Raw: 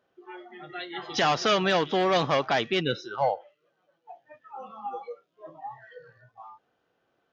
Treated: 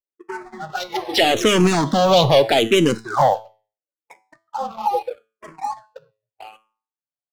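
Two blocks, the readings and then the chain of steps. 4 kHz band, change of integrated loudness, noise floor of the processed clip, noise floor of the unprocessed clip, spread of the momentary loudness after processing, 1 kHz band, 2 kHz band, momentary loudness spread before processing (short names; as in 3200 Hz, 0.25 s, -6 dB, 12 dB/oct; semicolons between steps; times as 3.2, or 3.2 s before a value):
+9.0 dB, +8.5 dB, under -85 dBFS, -75 dBFS, 19 LU, +8.0 dB, +5.5 dB, 21 LU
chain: Wiener smoothing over 15 samples; gate -49 dBFS, range -35 dB; envelope flanger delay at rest 7.1 ms, full sweep at -22.5 dBFS; sample leveller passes 2; high shelf 4800 Hz +8 dB; resonator 110 Hz, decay 0.37 s, harmonics all, mix 50%; vibrato 0.45 Hz 41 cents; maximiser +21 dB; endless phaser -0.77 Hz; gain -4.5 dB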